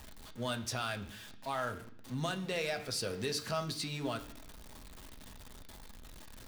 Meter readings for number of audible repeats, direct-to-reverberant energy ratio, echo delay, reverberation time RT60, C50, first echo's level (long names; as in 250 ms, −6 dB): no echo audible, 5.0 dB, no echo audible, 0.65 s, 14.0 dB, no echo audible